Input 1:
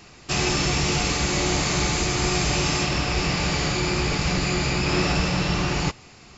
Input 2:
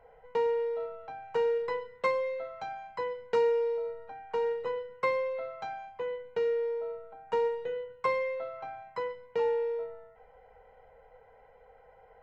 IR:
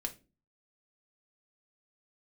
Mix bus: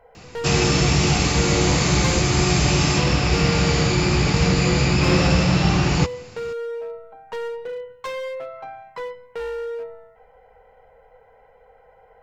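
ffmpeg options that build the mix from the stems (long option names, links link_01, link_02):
-filter_complex "[0:a]highpass=75,lowshelf=frequency=180:gain=9.5,adelay=150,volume=2dB[link_01];[1:a]acontrast=51,volume=26dB,asoftclip=hard,volume=-26dB,volume=-1dB,asplit=3[link_02][link_03][link_04];[link_02]atrim=end=2.2,asetpts=PTS-STARTPTS,afade=type=out:start_time=2.196:duration=0.004:curve=hsin[link_05];[link_03]atrim=start=2.2:end=2.84,asetpts=PTS-STARTPTS,volume=0[link_06];[link_04]atrim=start=2.84,asetpts=PTS-STARTPTS,afade=type=in:duration=0.004:curve=hsin[link_07];[link_05][link_06][link_07]concat=n=3:v=0:a=1[link_08];[link_01][link_08]amix=inputs=2:normalize=0"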